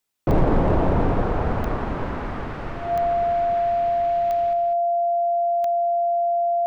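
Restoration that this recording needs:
clipped peaks rebuilt −11 dBFS
click removal
notch filter 690 Hz, Q 30
echo removal 200 ms −7 dB

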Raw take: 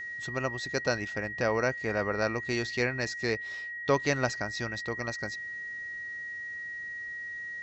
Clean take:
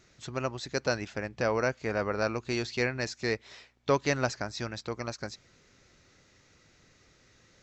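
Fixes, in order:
notch filter 1,900 Hz, Q 30

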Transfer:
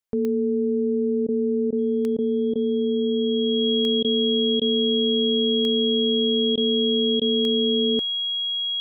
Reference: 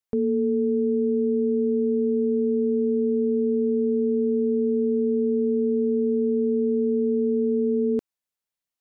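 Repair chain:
click removal
notch filter 3,300 Hz, Q 30
repair the gap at 0:01.27/0:01.71/0:02.17/0:02.54/0:04.03/0:04.60/0:06.56/0:07.20, 14 ms

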